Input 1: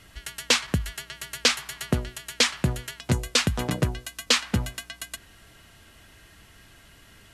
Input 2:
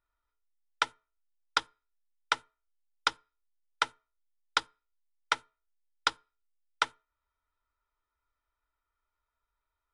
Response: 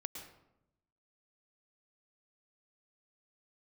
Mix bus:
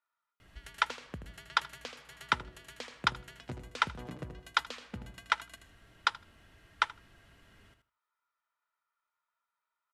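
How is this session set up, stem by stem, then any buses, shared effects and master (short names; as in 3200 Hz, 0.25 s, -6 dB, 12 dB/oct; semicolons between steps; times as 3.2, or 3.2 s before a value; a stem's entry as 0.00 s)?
-10.0 dB, 0.40 s, send -4.5 dB, echo send -6 dB, compressor 5:1, threshold -33 dBFS, peak gain reduction 15.5 dB
+2.5 dB, 0.00 s, no send, echo send -21 dB, HPF 860 Hz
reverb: on, RT60 0.85 s, pre-delay 0.102 s
echo: feedback echo 79 ms, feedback 15%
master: high shelf 4000 Hz -11.5 dB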